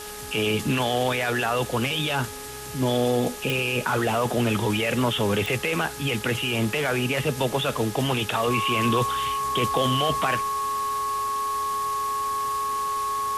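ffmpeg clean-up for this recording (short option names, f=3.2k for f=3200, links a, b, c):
-af "adeclick=t=4,bandreject=f=418.8:t=h:w=4,bandreject=f=837.6:t=h:w=4,bandreject=f=1.2564k:t=h:w=4,bandreject=f=1.6752k:t=h:w=4,bandreject=f=1.1k:w=30,afwtdn=0.013"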